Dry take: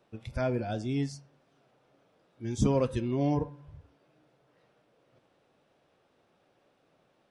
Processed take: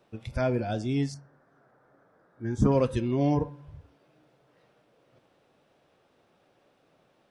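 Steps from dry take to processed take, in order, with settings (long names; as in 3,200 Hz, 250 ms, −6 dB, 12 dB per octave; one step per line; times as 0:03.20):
0:01.14–0:02.72: high shelf with overshoot 2,100 Hz −9 dB, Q 3
level +3 dB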